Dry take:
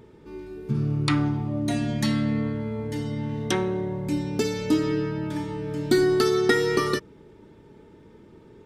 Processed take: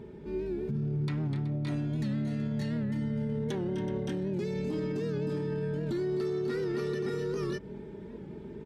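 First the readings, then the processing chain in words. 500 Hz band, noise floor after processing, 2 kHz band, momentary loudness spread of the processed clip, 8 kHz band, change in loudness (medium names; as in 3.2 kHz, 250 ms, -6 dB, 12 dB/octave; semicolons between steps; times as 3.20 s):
-7.0 dB, -45 dBFS, -14.0 dB, 7 LU, under -15 dB, -7.5 dB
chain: band-stop 1.2 kHz, Q 9.1; on a send: multi-tap echo 252/279/375/568/589 ms -11/-15.5/-17.5/-6.5/-5 dB; on the sum: saturation -12.5 dBFS, distortion -20 dB; bass shelf 370 Hz +6 dB; compression, threshold -25 dBFS, peak gain reduction 11.5 dB; treble shelf 4.7 kHz -9.5 dB; comb 5 ms, depth 45%; peak limiter -25.5 dBFS, peak gain reduction 9 dB; high-pass 40 Hz; warped record 78 rpm, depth 100 cents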